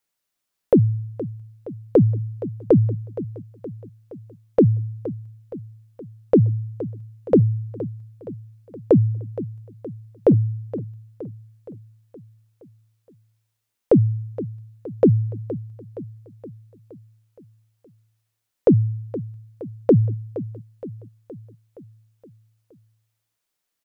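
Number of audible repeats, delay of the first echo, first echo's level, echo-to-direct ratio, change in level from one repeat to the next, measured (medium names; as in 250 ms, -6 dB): 5, 469 ms, -14.5 dB, -13.0 dB, -5.0 dB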